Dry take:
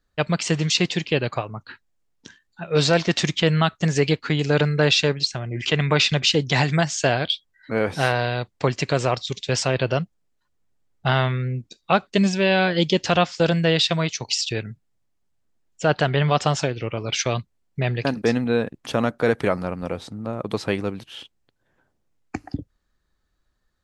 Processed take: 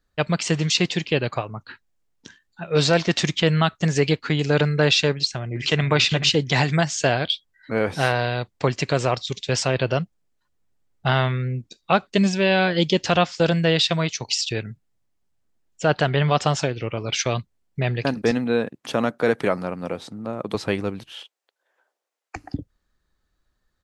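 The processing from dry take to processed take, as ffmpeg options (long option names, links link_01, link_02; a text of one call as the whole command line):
ffmpeg -i in.wav -filter_complex "[0:a]asplit=2[link_01][link_02];[link_02]afade=type=in:start_time=5.12:duration=0.01,afade=type=out:start_time=5.86:duration=0.01,aecho=0:1:430|860|1290:0.316228|0.0632456|0.0126491[link_03];[link_01][link_03]amix=inputs=2:normalize=0,asettb=1/sr,asplit=3[link_04][link_05][link_06];[link_04]atrim=end=18.314[link_07];[link_05]atrim=start=18.31:end=20.55,asetpts=PTS-STARTPTS,afade=type=in:duration=0.004:curve=qsin,afade=type=out:start_time=2.236:duration=0.004:curve=qsin,highpass=140[link_08];[link_06]atrim=start=20.546[link_09];[link_07][link_08]acrossfade=duration=0.004:curve1=hsin:curve2=qsin[link_10];[link_10][link_09]acrossfade=duration=0.004:curve1=qsin:curve2=hsin,asettb=1/sr,asplit=3[link_11][link_12][link_13];[link_11]atrim=end=21.124[link_14];[link_12]atrim=start=21.12:end=22.36,asetpts=PTS-STARTPTS,afade=type=in:duration=0.004:curve=qsin,afade=type=out:start_time=1.236:duration=0.004:curve=qsin,highpass=frequency=480:width=0.5412,highpass=frequency=480:width=1.3066[link_15];[link_13]atrim=start=22.356[link_16];[link_14][link_15]acrossfade=duration=0.004:curve1=hsin:curve2=qsin[link_17];[link_17][link_16]acrossfade=duration=0.004:curve1=qsin:curve2=hsin" out.wav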